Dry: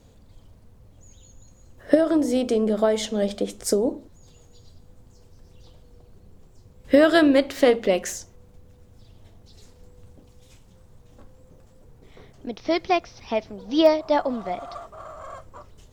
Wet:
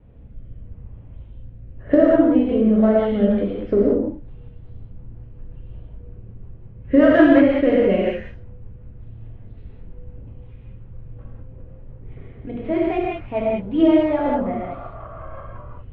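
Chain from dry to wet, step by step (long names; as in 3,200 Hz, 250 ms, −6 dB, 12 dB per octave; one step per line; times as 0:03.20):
Butterworth low-pass 2,700 Hz 36 dB per octave
low-shelf EQ 250 Hz +10 dB
in parallel at −11 dB: soft clipping −17 dBFS, distortion −8 dB
on the sum: rotating-speaker cabinet horn 0.85 Hz, later 5.5 Hz, at 0:02.49
reverb whose tail is shaped and stops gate 230 ms flat, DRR −5 dB
level −4 dB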